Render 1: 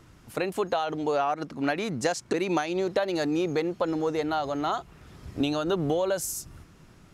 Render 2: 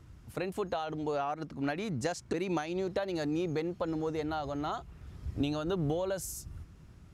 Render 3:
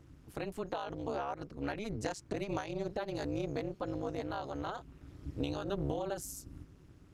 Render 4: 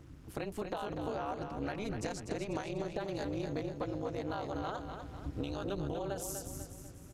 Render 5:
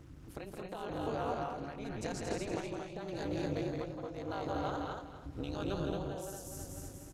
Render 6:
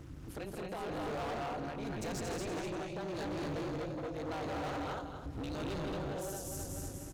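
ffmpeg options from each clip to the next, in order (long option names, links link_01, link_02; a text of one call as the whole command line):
ffmpeg -i in.wav -af "equalizer=frequency=63:width=0.54:gain=14,volume=-8dB" out.wav
ffmpeg -i in.wav -af "tremolo=f=210:d=0.974" out.wav
ffmpeg -i in.wav -af "acompressor=threshold=-39dB:ratio=3,aecho=1:1:246|492|738|984|1230:0.447|0.205|0.0945|0.0435|0.02,volume=4dB" out.wav
ffmpeg -i in.wav -af "tremolo=f=0.88:d=0.63,aecho=1:1:166.2|224.5:0.562|0.631" out.wav
ffmpeg -i in.wav -af "asoftclip=type=hard:threshold=-40dB,volume=4.5dB" out.wav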